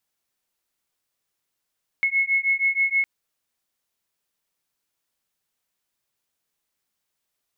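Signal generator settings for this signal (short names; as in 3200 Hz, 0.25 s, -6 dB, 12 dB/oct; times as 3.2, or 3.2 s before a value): beating tones 2180 Hz, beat 6.3 Hz, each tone -22 dBFS 1.01 s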